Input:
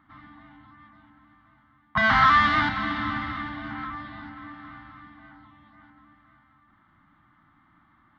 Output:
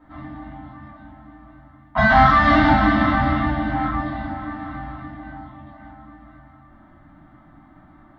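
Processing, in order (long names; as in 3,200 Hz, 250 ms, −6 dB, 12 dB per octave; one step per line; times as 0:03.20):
brickwall limiter −16 dBFS, peak gain reduction 6.5 dB
drawn EQ curve 150 Hz 0 dB, 650 Hz +9 dB, 1,200 Hz −6 dB
rectangular room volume 31 cubic metres, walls mixed, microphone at 2 metres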